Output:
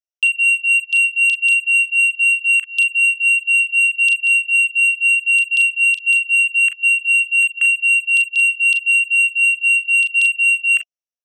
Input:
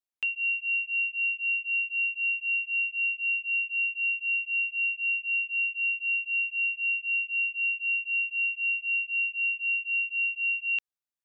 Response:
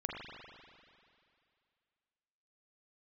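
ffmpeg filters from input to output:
-af "firequalizer=gain_entry='entry(340,0);entry(480,10);entry(690,14);entry(980,-29);entry(1400,-20);entry(2000,-1);entry(2800,11);entry(4000,-23);entry(5600,14);entry(8100,-16)':delay=0.05:min_phase=1,afwtdn=0.1,asoftclip=type=tanh:threshold=0.2,highshelf=f=2600:g=7.5,bandreject=f=2400:w=9.1,aecho=1:1:33|43:0.335|0.376,volume=1.33"

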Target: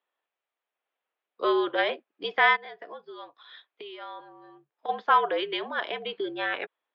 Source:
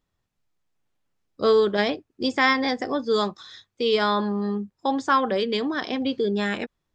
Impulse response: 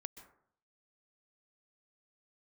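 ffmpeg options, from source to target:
-filter_complex "[0:a]asplit=3[s0][s1][s2];[s0]afade=t=out:st=2.55:d=0.02[s3];[s1]acompressor=threshold=0.0178:ratio=10,afade=t=in:st=2.55:d=0.02,afade=t=out:st=4.88:d=0.02[s4];[s2]afade=t=in:st=4.88:d=0.02[s5];[s3][s4][s5]amix=inputs=3:normalize=0,highpass=f=520:t=q:w=0.5412,highpass=f=520:t=q:w=1.307,lowpass=f=3500:t=q:w=0.5176,lowpass=f=3500:t=q:w=0.7071,lowpass=f=3500:t=q:w=1.932,afreqshift=-61"

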